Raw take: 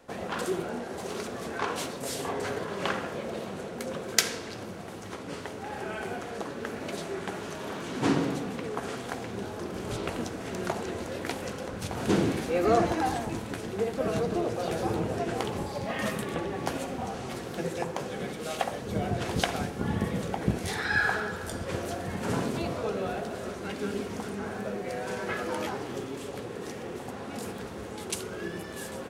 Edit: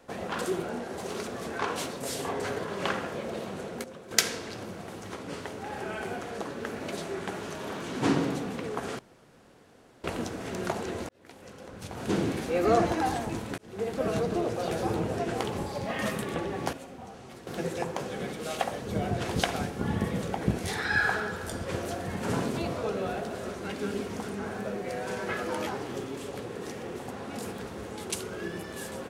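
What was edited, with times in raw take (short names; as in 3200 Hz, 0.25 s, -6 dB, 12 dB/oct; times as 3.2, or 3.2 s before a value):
3.84–4.11 gain -10 dB
8.99–10.04 room tone
11.09–12.62 fade in
13.58–13.93 fade in
16.73–17.47 gain -10 dB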